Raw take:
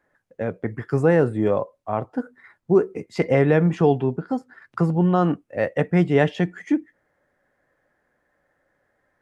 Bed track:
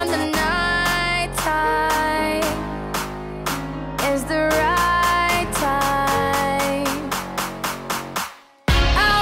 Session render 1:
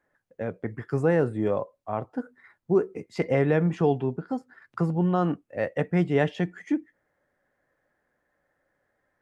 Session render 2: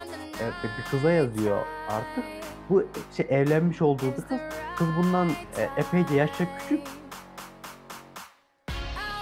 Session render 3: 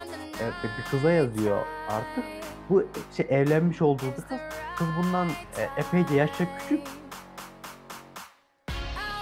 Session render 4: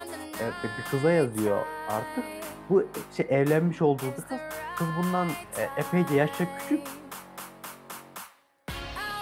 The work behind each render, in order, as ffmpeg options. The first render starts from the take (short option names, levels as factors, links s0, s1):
-af "volume=0.562"
-filter_complex "[1:a]volume=0.141[s0];[0:a][s0]amix=inputs=2:normalize=0"
-filter_complex "[0:a]asettb=1/sr,asplit=3[s0][s1][s2];[s0]atrim=end=3.984[s3];[s1]atrim=start=3.98:end=5.85,asetpts=PTS-STARTPTS,afade=t=in:d=0.004:c=qsin,afade=t=out:st=1.866:d=0.004:c=qsin,equalizer=f=300:w=1:g=-6[s4];[s2]atrim=start=5.846[s5];[s3][s4]acrossfade=d=0.004:c1=hsin:c2=qsin[s6];[s6][s5]acrossfade=d=0.004:c1=qsin:c2=hsin"
-af "highpass=f=120:p=1,highshelf=f=7800:t=q:w=1.5:g=6"